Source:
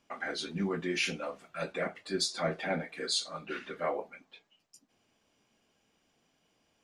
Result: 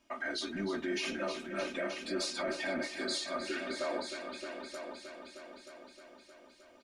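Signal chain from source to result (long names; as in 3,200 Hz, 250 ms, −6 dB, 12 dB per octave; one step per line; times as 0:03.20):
comb filter 3.2 ms, depth 89%
brickwall limiter −26.5 dBFS, peak gain reduction 10.5 dB
echo machine with several playback heads 310 ms, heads all three, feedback 54%, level −11.5 dB
level −1 dB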